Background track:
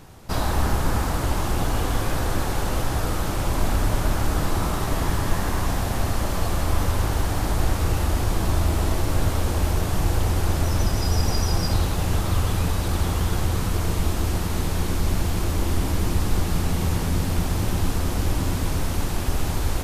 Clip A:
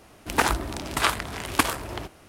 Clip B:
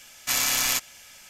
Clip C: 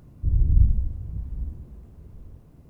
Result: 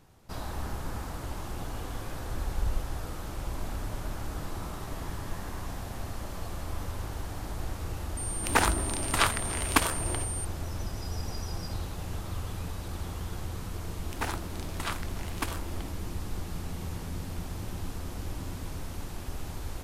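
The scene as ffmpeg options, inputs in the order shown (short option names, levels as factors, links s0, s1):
-filter_complex "[1:a]asplit=2[s0][s1];[0:a]volume=0.211[s2];[3:a]asubboost=boost=10:cutoff=56[s3];[s0]aeval=exprs='val(0)+0.0251*sin(2*PI*8900*n/s)':c=same[s4];[s1]asoftclip=type=tanh:threshold=0.447[s5];[s3]atrim=end=2.69,asetpts=PTS-STARTPTS,volume=0.15,afade=t=in:d=0.004:c=hsin,afade=t=out:st=2.686:d=0.004:c=hsin,adelay=2060[s6];[s4]atrim=end=2.28,asetpts=PTS-STARTPTS,volume=0.75,afade=t=in:d=0.004:c=hsin,afade=t=out:st=2.276:d=0.004:c=hsin,adelay=8170[s7];[s5]atrim=end=2.28,asetpts=PTS-STARTPTS,volume=0.266,afade=t=in:d=0.004:c=hsin,afade=t=out:st=2.276:d=0.004:c=hsin,adelay=13830[s8];[s2][s6][s7][s8]amix=inputs=4:normalize=0"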